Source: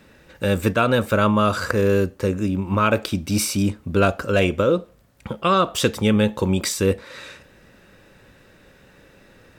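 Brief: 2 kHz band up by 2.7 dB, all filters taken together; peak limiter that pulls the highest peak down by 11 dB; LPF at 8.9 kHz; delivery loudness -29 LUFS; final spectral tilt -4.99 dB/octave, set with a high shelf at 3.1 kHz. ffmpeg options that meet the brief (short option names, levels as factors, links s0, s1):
-af "lowpass=8900,equalizer=f=2000:t=o:g=5.5,highshelf=f=3100:g=-4,volume=0.596,alimiter=limit=0.126:level=0:latency=1"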